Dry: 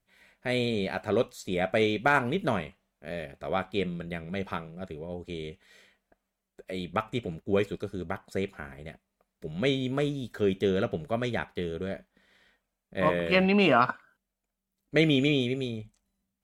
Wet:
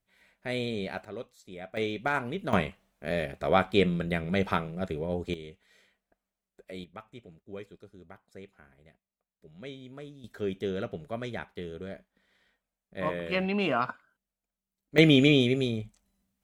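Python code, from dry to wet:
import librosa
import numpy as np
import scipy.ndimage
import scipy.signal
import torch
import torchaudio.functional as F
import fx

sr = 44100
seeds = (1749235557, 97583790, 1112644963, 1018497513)

y = fx.gain(x, sr, db=fx.steps((0.0, -4.0), (1.05, -14.0), (1.77, -5.5), (2.53, 6.0), (5.34, -6.0), (6.84, -16.0), (10.24, -6.0), (14.98, 4.0)))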